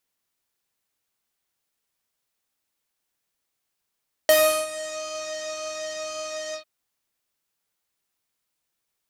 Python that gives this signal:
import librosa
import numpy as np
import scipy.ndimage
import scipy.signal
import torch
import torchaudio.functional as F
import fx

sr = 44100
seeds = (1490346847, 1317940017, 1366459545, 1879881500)

y = fx.sub_patch_pwm(sr, seeds[0], note=75, wave2='saw', interval_st=0, detune_cents=16, level2_db=-7.0, sub_db=-22.0, noise_db=-10.0, kind='lowpass', cutoff_hz=3600.0, q=3.3, env_oct=2.0, env_decay_s=0.72, env_sustain_pct=40, attack_ms=1.8, decay_s=0.37, sustain_db=-18, release_s=0.1, note_s=2.25, lfo_hz=0.93, width_pct=49, width_swing_pct=16)